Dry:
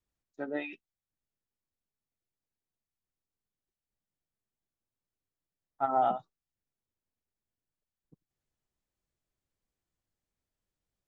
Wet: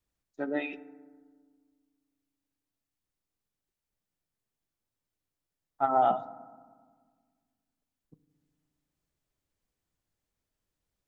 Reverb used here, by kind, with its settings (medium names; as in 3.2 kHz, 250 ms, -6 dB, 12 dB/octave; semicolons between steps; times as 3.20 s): FDN reverb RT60 1.6 s, low-frequency decay 1.45×, high-frequency decay 0.3×, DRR 14 dB; trim +3 dB